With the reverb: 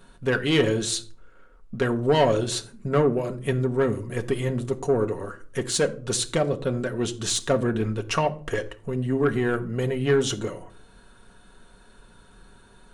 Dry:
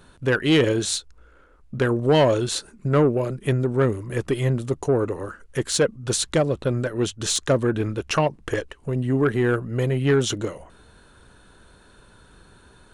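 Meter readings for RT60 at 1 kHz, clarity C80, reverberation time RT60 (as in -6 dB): 0.40 s, 21.0 dB, 0.45 s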